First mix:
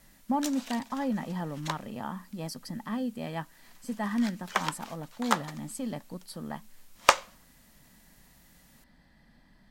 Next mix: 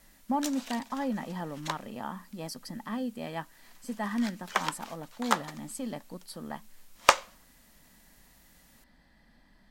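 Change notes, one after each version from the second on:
speech: add bell 130 Hz -6 dB 1.2 oct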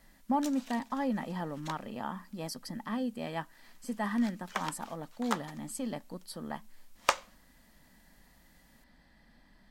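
background -7.0 dB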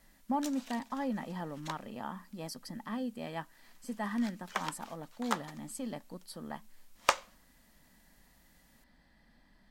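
speech -3.0 dB

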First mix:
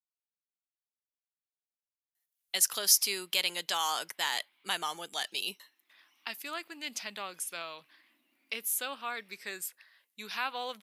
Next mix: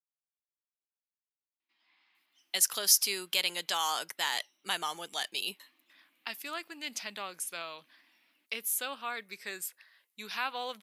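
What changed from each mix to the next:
background: entry -1.05 s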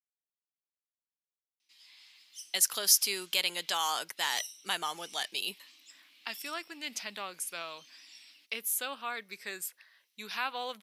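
background: remove LPF 1400 Hz 12 dB/oct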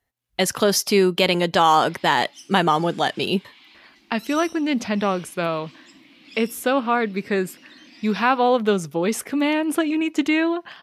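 speech: entry -2.15 s; master: remove differentiator

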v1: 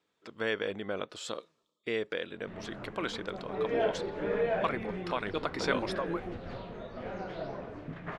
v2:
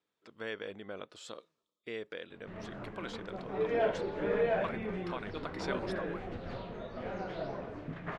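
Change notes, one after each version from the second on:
speech -8.0 dB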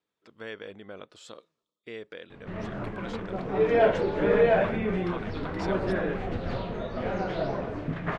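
background +8.5 dB; master: add low shelf 160 Hz +3.5 dB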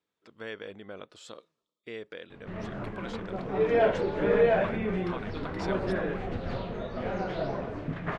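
reverb: off

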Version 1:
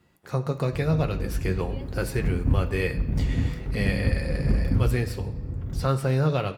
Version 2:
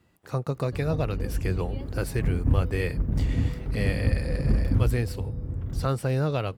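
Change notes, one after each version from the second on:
reverb: off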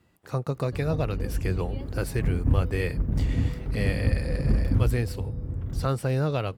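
none

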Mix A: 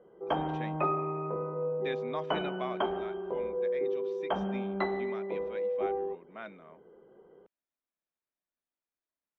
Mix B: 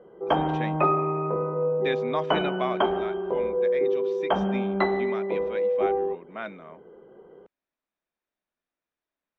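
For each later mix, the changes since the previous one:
speech +8.5 dB; background +7.5 dB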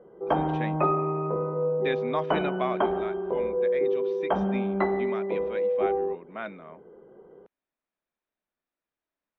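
speech: add air absorption 110 m; background: add air absorption 480 m

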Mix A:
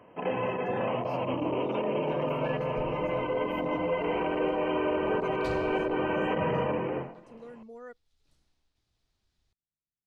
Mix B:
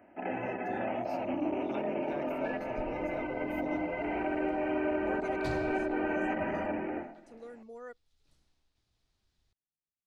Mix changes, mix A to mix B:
speech: add tone controls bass -6 dB, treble +4 dB; first sound: add fixed phaser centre 710 Hz, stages 8

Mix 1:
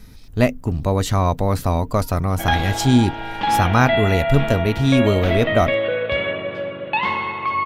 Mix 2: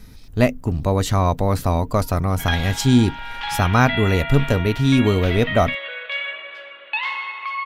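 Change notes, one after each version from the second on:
second sound: add HPF 1500 Hz 12 dB/oct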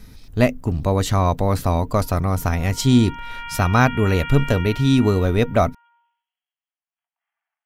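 second sound: muted; reverb: off

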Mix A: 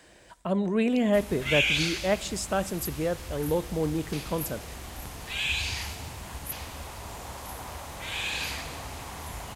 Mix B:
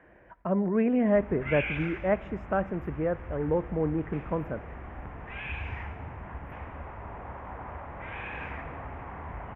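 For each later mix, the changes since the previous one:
master: add inverse Chebyshev low-pass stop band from 4000 Hz, stop band 40 dB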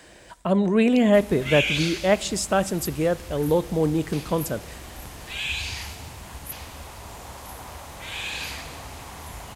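speech +6.0 dB; master: remove inverse Chebyshev low-pass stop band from 4000 Hz, stop band 40 dB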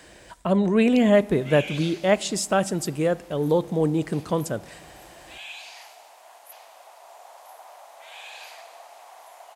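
background: add ladder high-pass 610 Hz, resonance 65%

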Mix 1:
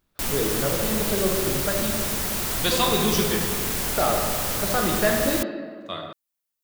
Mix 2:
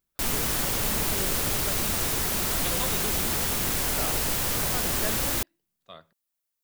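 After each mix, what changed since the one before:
speech -9.0 dB; reverb: off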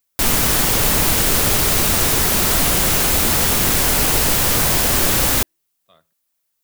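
speech -8.5 dB; background +10.5 dB

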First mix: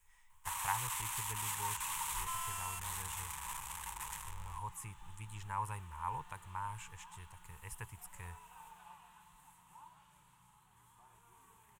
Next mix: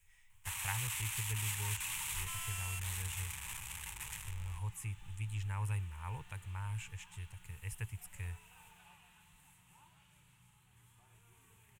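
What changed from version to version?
master: add fifteen-band EQ 100 Hz +10 dB, 1000 Hz -12 dB, 2500 Hz +6 dB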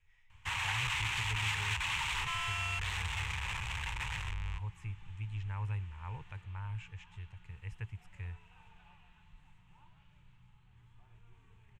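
first sound +12.0 dB; second sound: remove HPF 150 Hz 6 dB/oct; master: add air absorption 180 m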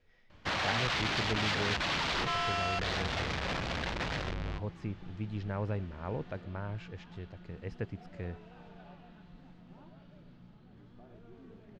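master: remove EQ curve 110 Hz 0 dB, 240 Hz -25 dB, 430 Hz -19 dB, 640 Hz -24 dB, 900 Hz -1 dB, 1400 Hz -8 dB, 2600 Hz +3 dB, 4700 Hz -13 dB, 7900 Hz +10 dB

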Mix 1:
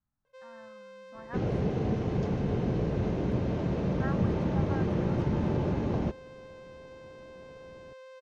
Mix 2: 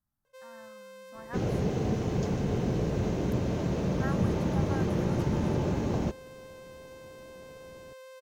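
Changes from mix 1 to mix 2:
second sound: remove air absorption 56 m; master: remove air absorption 120 m

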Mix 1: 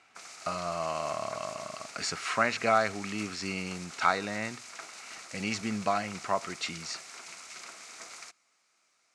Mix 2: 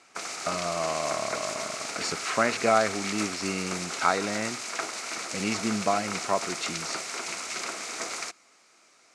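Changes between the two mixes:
background +11.0 dB; master: add bell 360 Hz +7 dB 1.8 oct

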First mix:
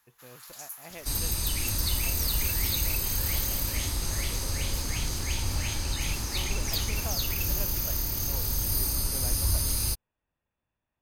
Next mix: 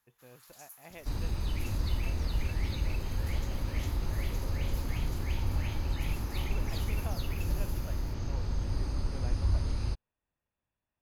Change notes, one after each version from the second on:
speech -4.0 dB; first sound -10.5 dB; second sound: add tape spacing loss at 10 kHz 33 dB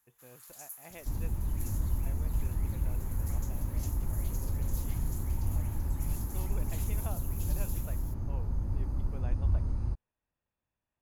second sound: add EQ curve 210 Hz 0 dB, 500 Hz -7 dB, 920 Hz -4 dB, 3200 Hz -20 dB; master: add resonant high shelf 6200 Hz +6 dB, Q 1.5

